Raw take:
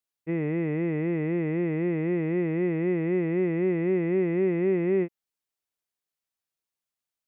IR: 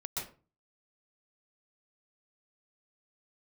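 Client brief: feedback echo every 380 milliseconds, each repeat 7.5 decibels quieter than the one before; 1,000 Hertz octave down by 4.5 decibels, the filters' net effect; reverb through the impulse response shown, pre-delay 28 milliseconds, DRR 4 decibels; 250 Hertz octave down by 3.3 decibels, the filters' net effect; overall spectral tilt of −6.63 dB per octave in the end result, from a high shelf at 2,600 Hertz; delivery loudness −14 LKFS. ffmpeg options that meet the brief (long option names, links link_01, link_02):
-filter_complex "[0:a]equalizer=frequency=250:width_type=o:gain=-5.5,equalizer=frequency=1000:width_type=o:gain=-7.5,highshelf=frequency=2600:gain=8.5,aecho=1:1:380|760|1140|1520|1900:0.422|0.177|0.0744|0.0312|0.0131,asplit=2[link_01][link_02];[1:a]atrim=start_sample=2205,adelay=28[link_03];[link_02][link_03]afir=irnorm=-1:irlink=0,volume=-5.5dB[link_04];[link_01][link_04]amix=inputs=2:normalize=0,volume=13.5dB"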